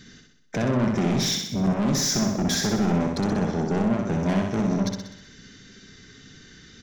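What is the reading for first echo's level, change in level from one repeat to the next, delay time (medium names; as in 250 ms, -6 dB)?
-4.0 dB, -5.0 dB, 63 ms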